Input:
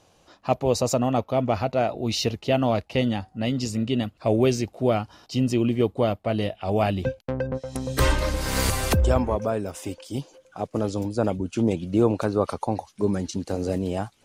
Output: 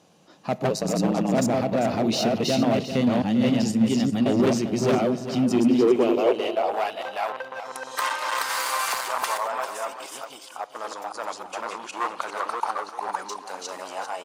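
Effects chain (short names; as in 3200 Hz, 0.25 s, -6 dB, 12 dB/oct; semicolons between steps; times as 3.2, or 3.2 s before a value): reverse delay 0.293 s, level -0.5 dB; 5.82–6.56 ripple EQ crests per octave 0.75, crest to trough 9 dB; in parallel at +1 dB: level quantiser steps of 16 dB; 0.7–1.34 on the sum: ring modulator 53 Hz; hard clip -14.5 dBFS, distortion -10 dB; high-pass sweep 180 Hz -> 1000 Hz, 5.39–6.87; echo 0.395 s -11 dB; on a send at -18 dB: reverb RT60 1.9 s, pre-delay 3 ms; on the sum: gain -4.5 dB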